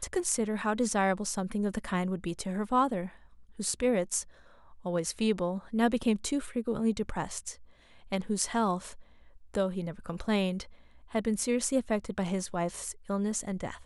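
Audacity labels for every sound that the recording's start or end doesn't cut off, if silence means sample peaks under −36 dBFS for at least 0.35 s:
3.600000	4.220000	sound
4.860000	7.520000	sound
8.120000	8.920000	sound
9.540000	10.630000	sound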